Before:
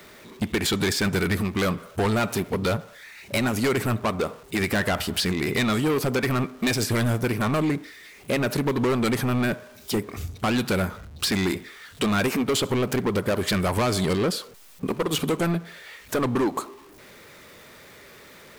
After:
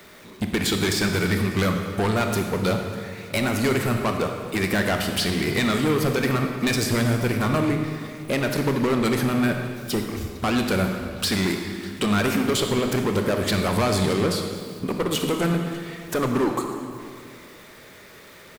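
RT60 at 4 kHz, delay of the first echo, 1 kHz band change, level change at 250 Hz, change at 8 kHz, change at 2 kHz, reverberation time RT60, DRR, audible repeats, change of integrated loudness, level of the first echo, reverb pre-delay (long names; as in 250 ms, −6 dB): 1.7 s, 598 ms, +1.5 dB, +2.0 dB, +1.0 dB, +1.5 dB, 2.1 s, 4.0 dB, 1, +1.5 dB, −23.5 dB, 24 ms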